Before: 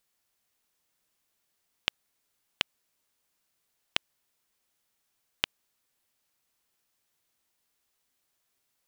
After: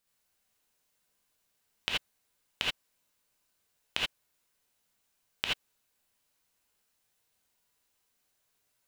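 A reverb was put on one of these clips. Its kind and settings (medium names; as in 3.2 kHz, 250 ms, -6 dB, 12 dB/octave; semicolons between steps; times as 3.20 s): gated-style reverb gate 100 ms rising, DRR -4.5 dB; trim -4.5 dB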